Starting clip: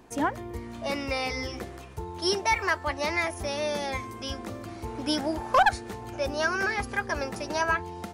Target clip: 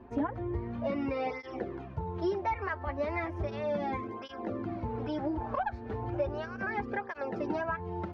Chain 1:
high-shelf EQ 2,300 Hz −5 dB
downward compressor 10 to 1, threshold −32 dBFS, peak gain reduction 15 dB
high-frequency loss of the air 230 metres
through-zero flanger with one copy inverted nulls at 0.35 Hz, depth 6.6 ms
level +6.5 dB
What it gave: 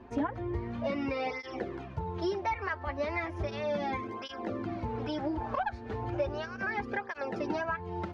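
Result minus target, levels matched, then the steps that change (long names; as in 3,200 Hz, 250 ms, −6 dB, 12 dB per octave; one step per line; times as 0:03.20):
4,000 Hz band +6.0 dB
change: high-shelf EQ 2,300 Hz −15.5 dB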